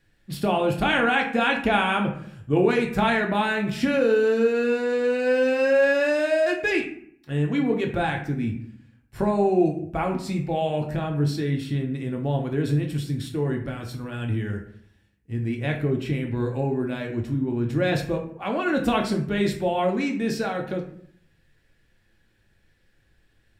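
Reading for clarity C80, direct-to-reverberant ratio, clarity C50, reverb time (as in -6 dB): 12.0 dB, 1.0 dB, 8.0 dB, 0.60 s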